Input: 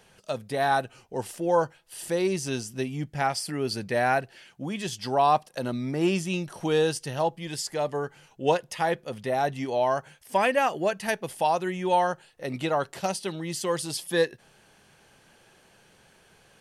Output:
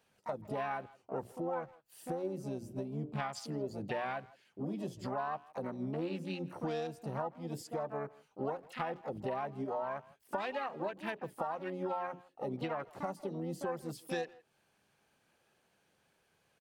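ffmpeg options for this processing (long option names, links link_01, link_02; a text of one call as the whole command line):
ffmpeg -i in.wav -filter_complex "[0:a]highpass=frequency=58:poles=1,bandreject=frequency=60:width_type=h:width=6,bandreject=frequency=120:width_type=h:width=6,bandreject=frequency=180:width_type=h:width=6,bandreject=frequency=240:width_type=h:width=6,bandreject=frequency=300:width_type=h:width=6,bandreject=frequency=360:width_type=h:width=6,bandreject=frequency=420:width_type=h:width=6,afwtdn=0.0178,equalizer=frequency=5100:width_type=o:width=2.4:gain=-2.5,acompressor=threshold=-37dB:ratio=8,asplit=2[link_01][link_02];[link_02]asetrate=66075,aresample=44100,atempo=0.66742,volume=-6dB[link_03];[link_01][link_03]amix=inputs=2:normalize=0,asplit=2[link_04][link_05];[link_05]adelay=160,highpass=300,lowpass=3400,asoftclip=type=hard:threshold=-35dB,volume=-20dB[link_06];[link_04][link_06]amix=inputs=2:normalize=0,volume=1dB" out.wav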